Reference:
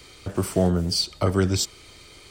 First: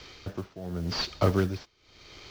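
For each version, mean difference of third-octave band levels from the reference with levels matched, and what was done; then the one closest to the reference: 7.0 dB: CVSD 32 kbps; modulation noise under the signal 29 dB; tremolo 0.87 Hz, depth 91%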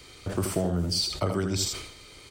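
5.0 dB: compressor, threshold -21 dBFS, peak gain reduction 6.5 dB; on a send: echo 80 ms -7.5 dB; on the sum: sustainer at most 71 dB/s; gain -2 dB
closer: second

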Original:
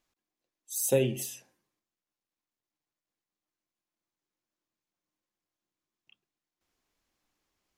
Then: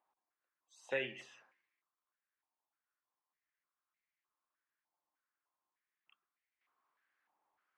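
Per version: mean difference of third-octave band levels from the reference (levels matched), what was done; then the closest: 9.0 dB: air absorption 120 m; stepped band-pass 3.3 Hz 870–2100 Hz; gain +10 dB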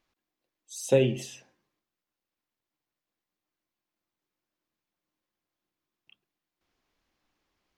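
3.5 dB: LPF 5000 Hz 12 dB/oct; gain +3.5 dB; Nellymoser 88 kbps 44100 Hz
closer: second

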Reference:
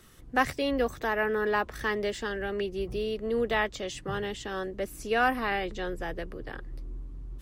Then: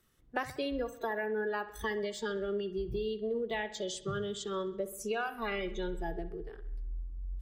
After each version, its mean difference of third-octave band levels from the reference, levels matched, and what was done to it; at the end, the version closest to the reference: 6.0 dB: spectral noise reduction 18 dB; compressor 12:1, threshold -33 dBFS, peak gain reduction 14.5 dB; dark delay 65 ms, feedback 55%, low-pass 3900 Hz, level -14 dB; gain +2 dB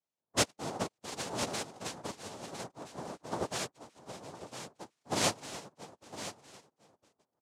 11.5 dB: noise vocoder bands 2; echo 1.007 s -5 dB; upward expander 2.5:1, over -45 dBFS; gain -2.5 dB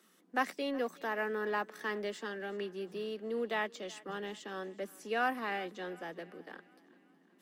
4.0 dB: Chebyshev high-pass 170 Hz, order 8; in parallel at -10.5 dB: crossover distortion -40.5 dBFS; on the sum: thinning echo 0.37 s, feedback 56%, high-pass 420 Hz, level -20.5 dB; gain -8.5 dB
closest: third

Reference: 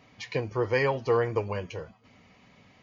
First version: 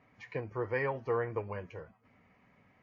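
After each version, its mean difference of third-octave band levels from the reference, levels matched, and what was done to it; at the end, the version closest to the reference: 2.0 dB: resonant high shelf 2700 Hz -11 dB, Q 1.5; gain -8 dB; WMA 64 kbps 22050 Hz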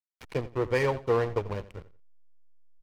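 6.5 dB: backlash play -27 dBFS; feedback echo 87 ms, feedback 22%, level -17 dB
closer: first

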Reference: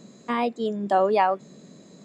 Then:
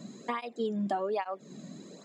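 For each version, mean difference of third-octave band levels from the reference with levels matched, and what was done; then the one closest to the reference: 5.5 dB: compressor 5:1, threshold -31 dBFS, peak gain reduction 14 dB; tape flanging out of phase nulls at 1.2 Hz, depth 2.5 ms; gain +3.5 dB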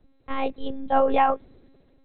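7.5 dB: monotone LPC vocoder at 8 kHz 270 Hz; three-band expander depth 40%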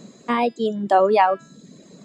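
2.0 dB: reverb removal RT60 0.68 s; de-hum 331.4 Hz, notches 35; gain +5 dB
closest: third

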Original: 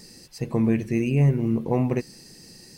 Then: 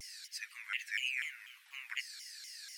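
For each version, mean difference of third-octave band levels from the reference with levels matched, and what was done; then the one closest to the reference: 21.5 dB: steep high-pass 1600 Hz 48 dB/oct; high shelf 2800 Hz -9.5 dB; shaped vibrato saw down 4.1 Hz, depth 250 cents; gain +7 dB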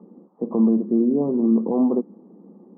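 10.0 dB: Chebyshev band-pass 190–1200 Hz, order 5; limiter -18 dBFS, peak gain reduction 6.5 dB; low shelf 390 Hz +8.5 dB; gain +2 dB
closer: second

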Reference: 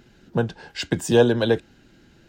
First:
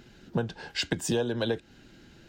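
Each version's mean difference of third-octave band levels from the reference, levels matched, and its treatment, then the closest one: 4.0 dB: bell 3900 Hz +2.5 dB 1.6 oct; compressor 6:1, threshold -25 dBFS, peak gain reduction 14 dB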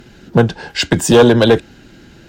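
2.5 dB: in parallel at +1 dB: limiter -12 dBFS, peak gain reduction 7 dB; on the sum: one-sided clip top -10.5 dBFS, bottom -6.5 dBFS; gain +5.5 dB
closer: second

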